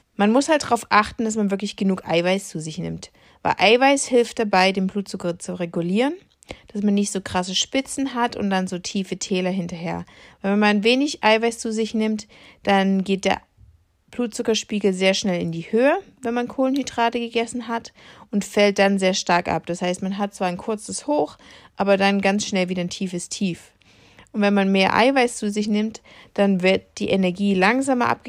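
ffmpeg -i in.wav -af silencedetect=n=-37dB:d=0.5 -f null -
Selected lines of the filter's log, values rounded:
silence_start: 13.39
silence_end: 14.13 | silence_duration: 0.74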